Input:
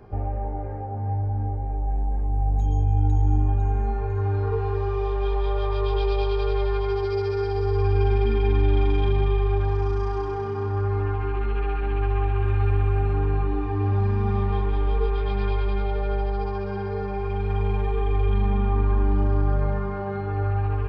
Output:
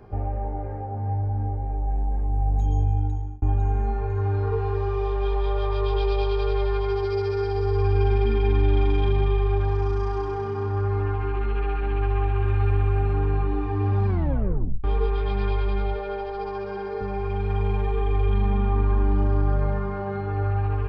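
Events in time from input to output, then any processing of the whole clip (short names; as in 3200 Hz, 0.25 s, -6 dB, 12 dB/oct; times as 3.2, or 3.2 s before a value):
2.83–3.42 fade out
14.07 tape stop 0.77 s
15.92–17.01 notches 50/100/150/200/250 Hz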